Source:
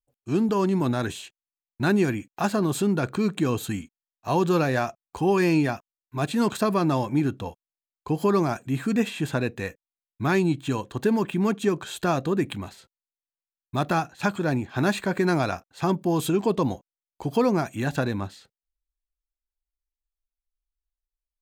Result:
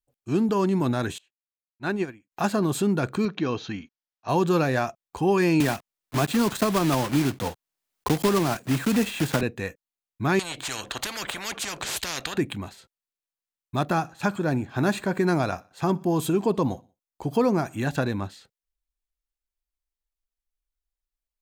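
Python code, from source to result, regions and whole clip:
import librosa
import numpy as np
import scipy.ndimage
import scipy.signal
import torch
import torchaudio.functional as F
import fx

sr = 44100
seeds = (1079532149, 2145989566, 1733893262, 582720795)

y = fx.chain(x, sr, fx.lowpass(hz=3400.0, slope=6),
    fx.low_shelf(hz=310.0, db=-7.5),
    fx.upward_expand(threshold_db=-36.0, expansion=2.5), at=(1.18, 2.32))
y = fx.chain(y, sr, fx.steep_lowpass(hz=6200.0, slope=96),
    fx.low_shelf(hz=200.0, db=-8.0), at=(3.25, 4.29))
y = fx.chain(y, sr, fx.block_float(bits=3),
    fx.band_squash(depth_pct=70), at=(5.6, 9.43))
y = fx.chain(y, sr, fx.high_shelf(hz=6000.0, db=-8.5),
    fx.spectral_comp(ratio=10.0), at=(10.39, 12.38))
y = fx.chain(y, sr, fx.peak_eq(hz=3100.0, db=-3.0, octaves=1.9),
    fx.echo_feedback(ms=61, feedback_pct=45, wet_db=-24.0), at=(13.84, 17.78))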